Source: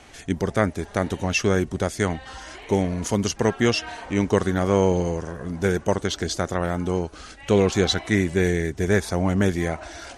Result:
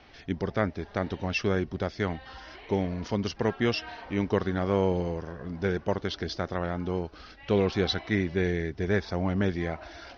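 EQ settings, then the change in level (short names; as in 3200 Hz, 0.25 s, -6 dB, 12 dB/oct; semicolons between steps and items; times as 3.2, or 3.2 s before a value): steep low-pass 5500 Hz 72 dB/oct; -6.0 dB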